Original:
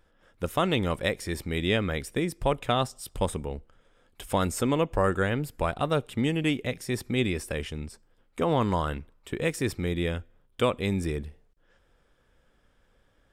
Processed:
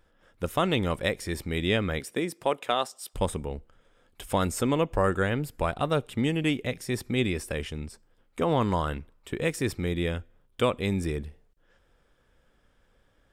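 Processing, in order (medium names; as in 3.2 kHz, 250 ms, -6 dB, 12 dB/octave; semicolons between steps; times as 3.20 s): 1.99–3.13 s: high-pass 160 Hz -> 590 Hz 12 dB/octave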